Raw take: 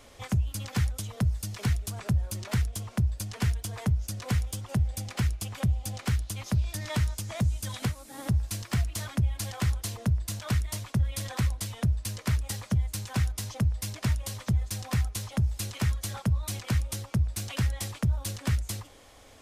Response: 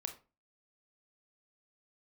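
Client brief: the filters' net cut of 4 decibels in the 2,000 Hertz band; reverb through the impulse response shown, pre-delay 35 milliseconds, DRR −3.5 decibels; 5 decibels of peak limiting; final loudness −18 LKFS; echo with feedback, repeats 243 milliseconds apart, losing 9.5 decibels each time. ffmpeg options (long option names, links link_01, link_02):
-filter_complex "[0:a]equalizer=frequency=2000:width_type=o:gain=-5,alimiter=limit=-22.5dB:level=0:latency=1,aecho=1:1:243|486|729|972:0.335|0.111|0.0365|0.012,asplit=2[link_01][link_02];[1:a]atrim=start_sample=2205,adelay=35[link_03];[link_02][link_03]afir=irnorm=-1:irlink=0,volume=5dB[link_04];[link_01][link_04]amix=inputs=2:normalize=0,volume=9.5dB"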